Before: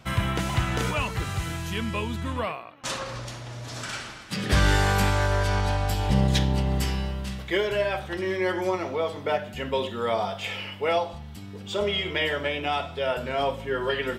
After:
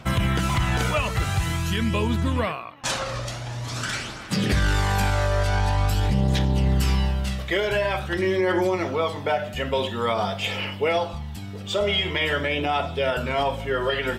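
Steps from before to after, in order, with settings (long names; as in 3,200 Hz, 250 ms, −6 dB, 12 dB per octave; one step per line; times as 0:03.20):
phase shifter 0.47 Hz, delay 1.7 ms, feedback 36%
brickwall limiter −18 dBFS, peak gain reduction 9.5 dB
level +4.5 dB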